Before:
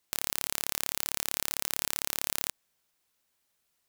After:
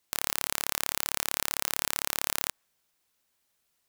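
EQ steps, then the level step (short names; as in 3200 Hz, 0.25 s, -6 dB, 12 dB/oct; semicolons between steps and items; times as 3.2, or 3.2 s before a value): dynamic EQ 1200 Hz, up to +5 dB, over -55 dBFS, Q 0.73; +1.0 dB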